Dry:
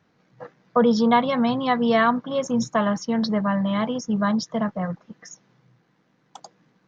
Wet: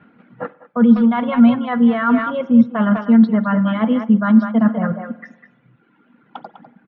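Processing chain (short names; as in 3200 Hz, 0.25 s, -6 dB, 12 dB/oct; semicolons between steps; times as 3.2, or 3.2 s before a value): reverb removal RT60 1.6 s; in parallel at -0.5 dB: level quantiser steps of 13 dB; on the sum: low shelf 170 Hz -7.5 dB; speakerphone echo 0.2 s, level -10 dB; reverb RT60 1.1 s, pre-delay 46 ms, DRR 17.5 dB; reverse; compressor 6:1, threshold -29 dBFS, peak gain reduction 16 dB; reverse; steep low-pass 3100 Hz 36 dB/oct; small resonant body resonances 230/1400 Hz, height 15 dB, ringing for 55 ms; gain +8 dB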